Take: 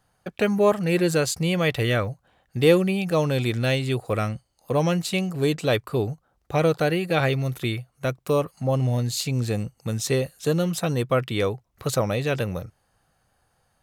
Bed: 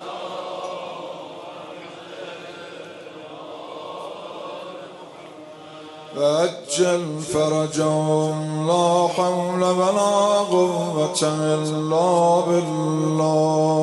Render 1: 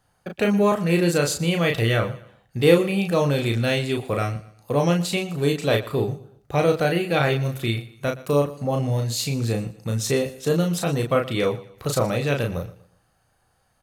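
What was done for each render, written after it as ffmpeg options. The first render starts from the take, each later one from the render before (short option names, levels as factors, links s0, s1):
-filter_complex "[0:a]asplit=2[s0][s1];[s1]adelay=35,volume=0.631[s2];[s0][s2]amix=inputs=2:normalize=0,aecho=1:1:119|238|357:0.126|0.0441|0.0154"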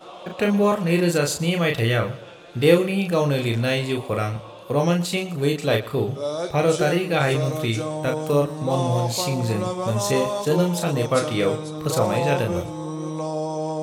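-filter_complex "[1:a]volume=0.376[s0];[0:a][s0]amix=inputs=2:normalize=0"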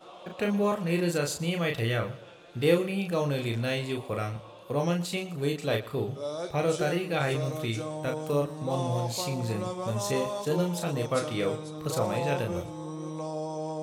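-af "volume=0.422"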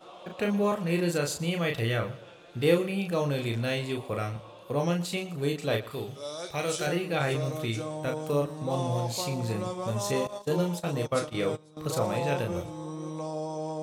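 -filter_complex "[0:a]asettb=1/sr,asplit=3[s0][s1][s2];[s0]atrim=end=5.914[s3];[s1]atrim=start=5.91:end=6.87,asetpts=PTS-STARTPTS,afade=t=in:d=0.004:c=qsin,afade=t=out:st=0.956:d=0.004:c=qsin,tiltshelf=f=1400:g=-6[s4];[s2]atrim=start=6.866[s5];[s3][s4]acrossfade=d=0.004:c1=hsin:c2=qsin[s6];[s6][s5]acrossfade=d=0.004:c1=qsin:c2=hsin,asettb=1/sr,asplit=3[s7][s8][s9];[s7]atrim=end=10.274[s10];[s8]atrim=start=10.27:end=11.77,asetpts=PTS-STARTPTS,afade=t=in:d=0.004:c=qsin,afade=t=out:st=1.496:d=0.004:c=qsin,agate=range=0.158:threshold=0.0224:ratio=16:release=100:detection=peak[s11];[s9]atrim=start=11.766[s12];[s10][s11]acrossfade=d=0.004:c1=hsin:c2=qsin[s13];[s13][s12]acrossfade=d=0.004:c1=qsin:c2=hsin"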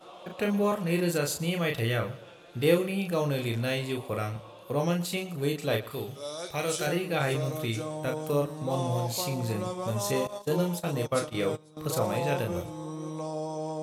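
-af "equalizer=f=12000:t=o:w=0.44:g=8"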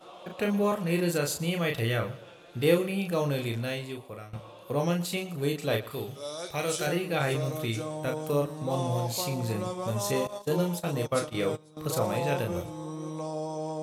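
-filter_complex "[0:a]asplit=2[s0][s1];[s0]atrim=end=4.33,asetpts=PTS-STARTPTS,afade=t=out:st=3.34:d=0.99:silence=0.158489[s2];[s1]atrim=start=4.33,asetpts=PTS-STARTPTS,afade=t=in:d=0.004:c=hsin:silence=0.158489[s3];[s2][s3]concat=n=2:v=0:a=1"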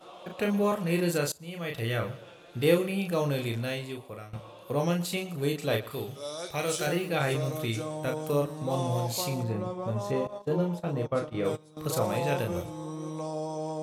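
-filter_complex "[0:a]asettb=1/sr,asplit=3[s0][s1][s2];[s0]atrim=end=6.664[s3];[s1]atrim=start=6.66:end=7.09,asetpts=PTS-STARTPTS,afade=t=in:d=0.004:c=qsin,afade=t=out:st=0.426:d=0.004:c=qsin,acrusher=bits=7:mix=0:aa=0.5[s4];[s2]atrim=start=7.086[s5];[s3][s4]acrossfade=d=0.004:c1=hsin:c2=qsin[s6];[s6][s5]acrossfade=d=0.004:c1=qsin:c2=hsin,asplit=3[s7][s8][s9];[s7]afade=t=out:st=9.42:d=0.02[s10];[s8]lowpass=f=1200:p=1,afade=t=in:st=9.42:d=0.02,afade=t=out:st=11.44:d=0.02[s11];[s9]afade=t=in:st=11.44:d=0.02[s12];[s10][s11][s12]amix=inputs=3:normalize=0,asplit=2[s13][s14];[s13]atrim=end=1.32,asetpts=PTS-STARTPTS,afade=t=out:st=1.316:d=0.004:c=hsin:silence=0.0749894[s15];[s14]atrim=start=1.32,asetpts=PTS-STARTPTS,afade=t=in:d=0.76:silence=0.0749894[s16];[s15][s16]concat=n=2:v=0:a=1"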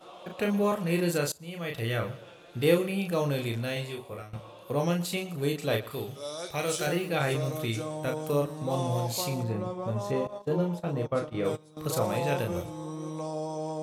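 -filter_complex "[0:a]asettb=1/sr,asplit=3[s0][s1][s2];[s0]atrim=end=3.744[s3];[s1]atrim=start=3.74:end=4.22,asetpts=PTS-STARTPTS,afade=t=in:d=0.004:c=qsin,afade=t=out:st=0.476:d=0.004:c=qsin,asplit=2[s4][s5];[s5]adelay=21,volume=0.794[s6];[s4][s6]amix=inputs=2:normalize=0,atrim=end_sample=21168[s7];[s2]atrim=start=4.216[s8];[s3][s7]acrossfade=d=0.004:c1=hsin:c2=qsin[s9];[s9][s8]acrossfade=d=0.004:c1=qsin:c2=hsin"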